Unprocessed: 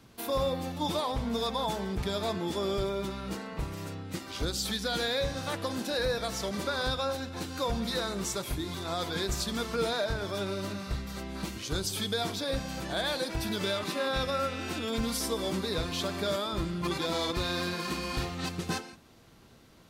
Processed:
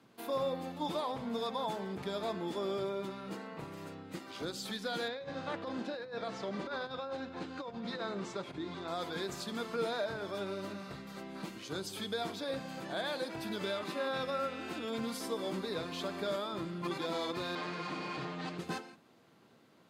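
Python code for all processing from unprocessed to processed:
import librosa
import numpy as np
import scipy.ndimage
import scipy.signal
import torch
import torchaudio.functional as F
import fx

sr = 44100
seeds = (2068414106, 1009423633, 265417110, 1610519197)

y = fx.chain(x, sr, fx.air_absorb(metres=110.0),
    fx.over_compress(threshold_db=-33.0, ratio=-0.5), at=(5.08, 8.88))
y = fx.chain(y, sr, fx.lower_of_two(delay_ms=6.5),
    fx.air_absorb(metres=92.0),
    fx.env_flatten(amount_pct=50), at=(17.55, 18.58))
y = scipy.signal.sosfilt(scipy.signal.bessel(4, 190.0, 'highpass', norm='mag', fs=sr, output='sos'), y)
y = fx.high_shelf(y, sr, hz=3400.0, db=-9.0)
y = fx.notch(y, sr, hz=5700.0, q=19.0)
y = y * 10.0 ** (-3.5 / 20.0)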